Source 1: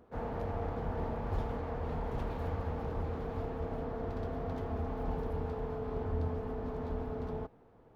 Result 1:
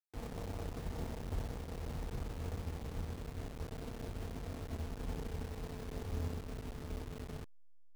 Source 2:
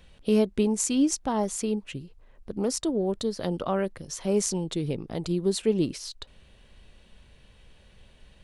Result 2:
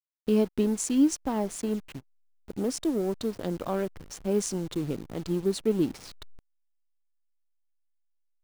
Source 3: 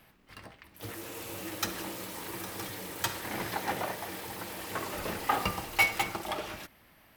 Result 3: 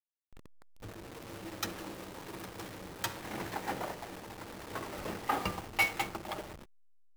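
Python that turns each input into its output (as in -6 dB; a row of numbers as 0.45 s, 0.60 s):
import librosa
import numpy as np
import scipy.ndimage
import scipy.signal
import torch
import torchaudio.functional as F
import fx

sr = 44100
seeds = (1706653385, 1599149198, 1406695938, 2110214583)

y = fx.delta_hold(x, sr, step_db=-38.0)
y = fx.dynamic_eq(y, sr, hz=290.0, q=1.7, threshold_db=-40.0, ratio=4.0, max_db=5)
y = fx.backlash(y, sr, play_db=-36.5)
y = y * librosa.db_to_amplitude(-3.5)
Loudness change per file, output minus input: -6.0 LU, -1.5 LU, -4.0 LU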